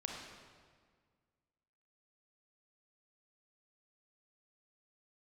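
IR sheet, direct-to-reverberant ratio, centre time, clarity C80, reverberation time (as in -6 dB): -0.5 dB, 75 ms, 3.0 dB, 1.7 s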